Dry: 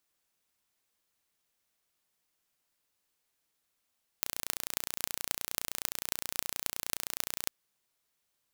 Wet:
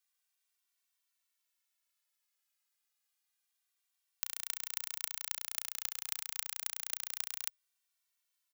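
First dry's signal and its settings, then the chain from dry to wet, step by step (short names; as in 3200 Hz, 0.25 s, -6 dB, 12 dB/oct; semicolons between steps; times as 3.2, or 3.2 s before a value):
pulse train 29.6/s, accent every 8, -1.5 dBFS 3.27 s
Bessel high-pass 1400 Hz, order 2; endless flanger 2.1 ms -0.28 Hz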